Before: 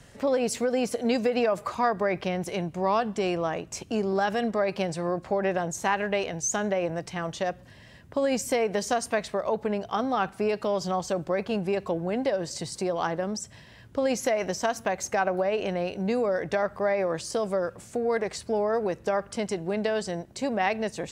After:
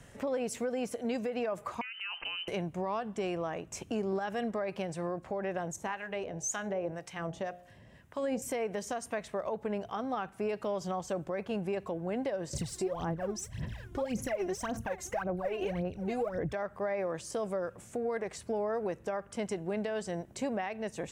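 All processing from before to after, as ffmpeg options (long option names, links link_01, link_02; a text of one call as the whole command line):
ffmpeg -i in.wav -filter_complex "[0:a]asettb=1/sr,asplit=3[link_01][link_02][link_03];[link_01]atrim=end=1.814[link_04];[link_02]atrim=start=1.81:end=2.48,asetpts=PTS-STARTPTS,afade=type=in:duration=0.004:curve=qsin,afade=type=out:start_time=0.666:duration=0.004:curve=qsin,lowpass=frequency=2700:width_type=q:width=0.5098,lowpass=frequency=2700:width_type=q:width=0.6013,lowpass=frequency=2700:width_type=q:width=0.9,lowpass=frequency=2700:width_type=q:width=2.563,afreqshift=-3200,acompressor=threshold=-30dB:ratio=6:attack=3.2:release=140:knee=1:detection=peak[link_05];[link_03]atrim=start=2.476[link_06];[link_04][link_05]acrossfade=duration=0.004:curve1=hsin:curve2=qsin[link_07];[link_07][link_06]acrossfade=duration=0.004:curve1=qsin:curve2=hsin,asettb=1/sr,asplit=3[link_08][link_09][link_10];[link_08]atrim=end=5.764[link_11];[link_09]atrim=start=5.76:end=8.42,asetpts=PTS-STARTPTS,afade=type=in:duration=0.004:curve=qsin,afade=type=out:start_time=2.656:duration=0.004:curve=qsin,bandreject=frequency=59.2:width_type=h:width=4,bandreject=frequency=118.4:width_type=h:width=4,bandreject=frequency=177.6:width_type=h:width=4,bandreject=frequency=236.8:width_type=h:width=4,bandreject=frequency=296:width_type=h:width=4,bandreject=frequency=355.2:width_type=h:width=4,bandreject=frequency=414.4:width_type=h:width=4,bandreject=frequency=473.6:width_type=h:width=4,bandreject=frequency=532.8:width_type=h:width=4,bandreject=frequency=592:width_type=h:width=4,bandreject=frequency=651.2:width_type=h:width=4,bandreject=frequency=710.4:width_type=h:width=4,bandreject=frequency=769.6:width_type=h:width=4,bandreject=frequency=828.8:width_type=h:width=4,acrossover=split=890[link_12][link_13];[link_12]aeval=exprs='val(0)*(1-0.7/2+0.7/2*cos(2*PI*1.9*n/s))':channel_layout=same[link_14];[link_13]aeval=exprs='val(0)*(1-0.7/2-0.7/2*cos(2*PI*1.9*n/s))':channel_layout=same[link_15];[link_14][link_15]amix=inputs=2:normalize=0[link_16];[link_10]atrim=start=8.416[link_17];[link_11][link_16]acrossfade=duration=0.004:curve1=hsin:curve2=qsin[link_18];[link_18][link_17]acrossfade=duration=0.004:curve1=qsin:curve2=hsin,asettb=1/sr,asplit=3[link_19][link_20][link_21];[link_19]atrim=end=12.534[link_22];[link_20]atrim=start=12.53:end=16.53,asetpts=PTS-STARTPTS,afade=type=in:duration=0.004:curve=qsin,afade=type=out:start_time=3.996:duration=0.004:curve=qsin,aphaser=in_gain=1:out_gain=1:delay=2.9:decay=0.8:speed=1.8:type=sinusoidal,lowshelf=frequency=210:gain=10.5[link_23];[link_21]atrim=start=16.526[link_24];[link_22][link_23]acrossfade=duration=0.004:curve1=hsin:curve2=qsin[link_25];[link_25][link_24]acrossfade=duration=0.004:curve1=qsin:curve2=hsin,equalizer=frequency=4500:width=2.3:gain=-7.5,alimiter=limit=-23dB:level=0:latency=1:release=465,volume=-2dB" out.wav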